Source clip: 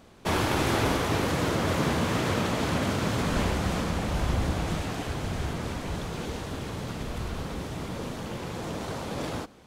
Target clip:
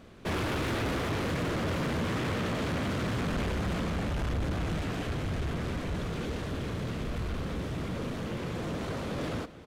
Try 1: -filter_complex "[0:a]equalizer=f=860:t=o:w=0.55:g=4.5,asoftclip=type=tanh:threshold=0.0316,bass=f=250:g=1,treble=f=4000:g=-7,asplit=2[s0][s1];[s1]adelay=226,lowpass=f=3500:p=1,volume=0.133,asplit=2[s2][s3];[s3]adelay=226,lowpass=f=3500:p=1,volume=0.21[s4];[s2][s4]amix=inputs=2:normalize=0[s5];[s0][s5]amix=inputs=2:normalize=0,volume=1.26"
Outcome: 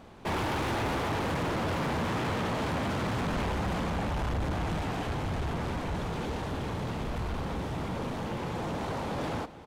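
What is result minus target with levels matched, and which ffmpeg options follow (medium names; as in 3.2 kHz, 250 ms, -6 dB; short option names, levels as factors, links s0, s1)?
1 kHz band +4.5 dB
-filter_complex "[0:a]equalizer=f=860:t=o:w=0.55:g=-6.5,asoftclip=type=tanh:threshold=0.0316,bass=f=250:g=1,treble=f=4000:g=-7,asplit=2[s0][s1];[s1]adelay=226,lowpass=f=3500:p=1,volume=0.133,asplit=2[s2][s3];[s3]adelay=226,lowpass=f=3500:p=1,volume=0.21[s4];[s2][s4]amix=inputs=2:normalize=0[s5];[s0][s5]amix=inputs=2:normalize=0,volume=1.26"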